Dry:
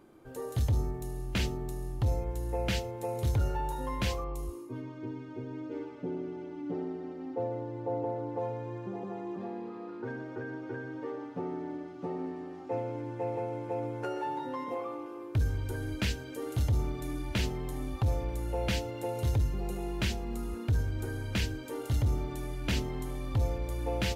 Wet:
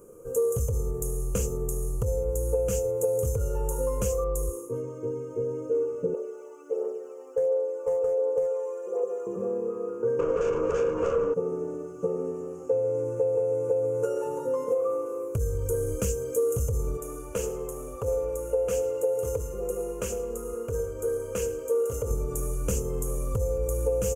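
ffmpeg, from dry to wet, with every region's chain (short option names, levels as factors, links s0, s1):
-filter_complex "[0:a]asettb=1/sr,asplit=3[s0][s1][s2];[s0]atrim=end=6.144[s3];[s1]atrim=start=6.14:end=9.27,asetpts=PTS-STARTPTS,afade=t=in:d=0.004:c=qsin,afade=t=out:st=3.126:d=0.004:c=qsin,highpass=f=470:w=0.5412,highpass=f=470:w=1.3066,volume=37.6,asoftclip=hard,volume=0.0266,aphaser=in_gain=1:out_gain=1:delay=1.1:decay=0.44:speed=1.4:type=triangular[s4];[s2]atrim=start=9.266[s5];[s3][s4]acrossfade=d=0.004:c1=hsin:c2=qsin[s6];[s6][s5]acrossfade=d=0.004:c1=qsin:c2=hsin,asettb=1/sr,asplit=3[s7][s8][s9];[s7]atrim=end=10.194[s10];[s8]atrim=start=10.19:end=11.34,asetpts=PTS-STARTPTS,afade=t=in:d=0.004:c=qsin,afade=t=out:st=1.146:d=0.004:c=qsin,highpass=240,lowpass=3600,aeval=exprs='0.0422*sin(PI/2*5.01*val(0)/0.0422)':c=same[s11];[s9]atrim=start=11.336[s12];[s10][s11]acrossfade=d=0.004:c1=hsin:c2=qsin[s13];[s13][s12]acrossfade=d=0.004:c1=qsin:c2=hsin,asettb=1/sr,asplit=3[s14][s15][s16];[s14]atrim=end=16.974[s17];[s15]atrim=start=16.97:end=22.11,asetpts=PTS-STARTPTS,afade=t=in:d=0.004:c=qsin,afade=t=out:st=5.136:d=0.004:c=qsin,bass=f=250:g=-14,treble=f=4000:g=-8,aecho=1:1:108|216|324:0.158|0.0618|0.0241,atrim=end_sample=226674[s18];[s16]atrim=start=22.106[s19];[s17][s18]acrossfade=d=0.004:c1=hsin:c2=qsin[s20];[s20][s19]acrossfade=d=0.004:c1=qsin:c2=hsin,firequalizer=gain_entry='entry(150,0);entry(270,-12);entry(480,13);entry(730,-15);entry(1200,-2);entry(1900,-22);entry(2700,-11);entry(3800,-28);entry(6600,11);entry(13000,8)':delay=0.05:min_phase=1,acompressor=threshold=0.0282:ratio=6,aecho=1:1:4.2:0.31,volume=2.37"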